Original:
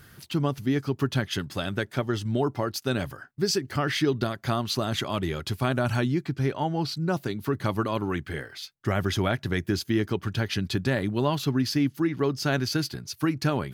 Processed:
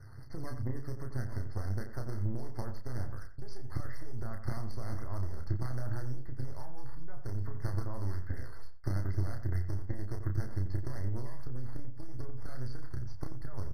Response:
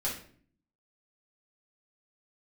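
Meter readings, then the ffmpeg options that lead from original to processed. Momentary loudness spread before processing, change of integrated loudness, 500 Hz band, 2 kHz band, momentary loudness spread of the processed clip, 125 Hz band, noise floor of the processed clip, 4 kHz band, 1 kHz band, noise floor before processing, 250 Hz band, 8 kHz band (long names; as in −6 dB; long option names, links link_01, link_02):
5 LU, −12.0 dB, −19.0 dB, −19.5 dB, 10 LU, −7.0 dB, −38 dBFS, −27.5 dB, −18.0 dB, −55 dBFS, −18.0 dB, below −20 dB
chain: -filter_complex "[0:a]aeval=exprs='if(lt(val(0),0),0.251*val(0),val(0))':channel_layout=same,asubboost=boost=4:cutoff=84,adynamicsmooth=sensitivity=2:basefreq=2800,alimiter=limit=-17.5dB:level=0:latency=1:release=153,acompressor=threshold=-31dB:ratio=6,acrusher=samples=9:mix=1:aa=0.000001:lfo=1:lforange=14.4:lforate=2.5,lowshelf=frequency=140:width_type=q:width=3:gain=6,aeval=exprs='0.141*(cos(1*acos(clip(val(0)/0.141,-1,1)))-cos(1*PI/2))+0.0158*(cos(2*acos(clip(val(0)/0.141,-1,1)))-cos(2*PI/2))+0.0282*(cos(4*acos(clip(val(0)/0.141,-1,1)))-cos(4*PI/2))':channel_layout=same,asplit=2[link_01][link_02];[link_02]adelay=31,volume=-5.5dB[link_03];[link_01][link_03]amix=inputs=2:normalize=0,asplit=2[link_04][link_05];[link_05]adelay=88,lowpass=frequency=1800:poles=1,volume=-9dB,asplit=2[link_06][link_07];[link_07]adelay=88,lowpass=frequency=1800:poles=1,volume=0.2,asplit=2[link_08][link_09];[link_09]adelay=88,lowpass=frequency=1800:poles=1,volume=0.2[link_10];[link_04][link_06][link_08][link_10]amix=inputs=4:normalize=0,aresample=32000,aresample=44100,afftfilt=real='re*eq(mod(floor(b*sr/1024/2100),2),0)':imag='im*eq(mod(floor(b*sr/1024/2100),2),0)':win_size=1024:overlap=0.75,volume=-1.5dB"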